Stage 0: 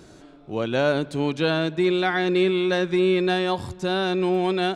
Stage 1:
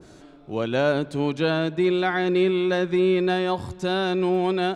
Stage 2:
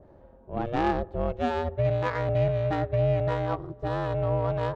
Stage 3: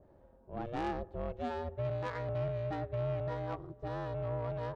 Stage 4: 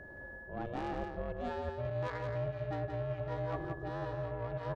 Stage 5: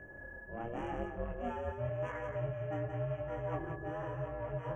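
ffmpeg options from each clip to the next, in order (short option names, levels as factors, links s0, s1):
-af "adynamicequalizer=threshold=0.0141:dfrequency=1900:dqfactor=0.7:tfrequency=1900:tqfactor=0.7:attack=5:release=100:ratio=0.375:range=2:mode=cutabove:tftype=highshelf"
-af "equalizer=f=200:t=o:w=0.33:g=-5.5,adynamicsmooth=sensitivity=0.5:basefreq=910,aeval=exprs='val(0)*sin(2*PI*240*n/s)':c=same"
-af "asoftclip=type=tanh:threshold=0.112,volume=0.376"
-af "aeval=exprs='val(0)+0.00126*sin(2*PI*1700*n/s)':c=same,areverse,acompressor=threshold=0.00708:ratio=12,areverse,aecho=1:1:173:0.531,volume=2.51"
-af "flanger=delay=20:depth=6.6:speed=0.91,asuperstop=centerf=4300:order=12:qfactor=1.6,volume=1.26"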